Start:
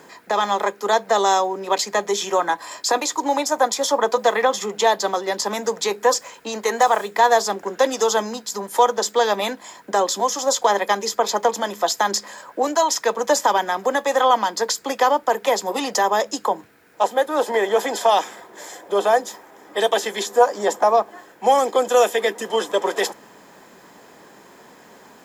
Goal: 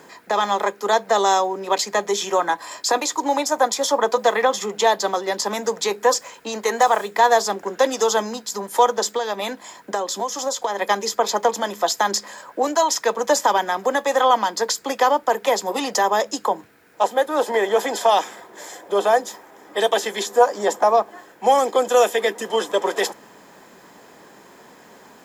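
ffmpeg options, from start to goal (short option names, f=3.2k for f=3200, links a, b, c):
-filter_complex "[0:a]asettb=1/sr,asplit=3[a][b][c];[a]atrim=end=9.164[d];[b]atrim=start=9.16:end=10.79,asetpts=PTS-STARTPTS,afade=t=in:d=0.004:c=qsin,afade=t=out:st=1.626:d=0.004:c=qsin,acompressor=threshold=-21dB:ratio=5[e];[c]atrim=start=10.786[f];[d][e]acrossfade=d=0.004:c1=hsin:c2=qsin[g];[g][f]acrossfade=d=0.004:c1=qsin:c2=hsin"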